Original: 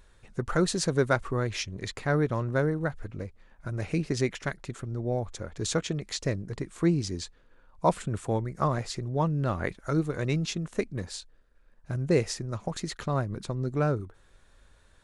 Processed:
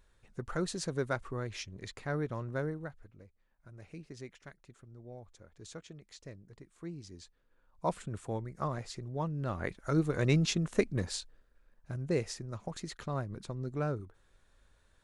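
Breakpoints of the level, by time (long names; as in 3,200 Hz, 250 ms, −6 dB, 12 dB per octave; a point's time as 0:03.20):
0:02.70 −9 dB
0:03.12 −19 dB
0:06.88 −19 dB
0:07.90 −8.5 dB
0:09.34 −8.5 dB
0:10.30 +1 dB
0:11.14 +1 dB
0:11.97 −7.5 dB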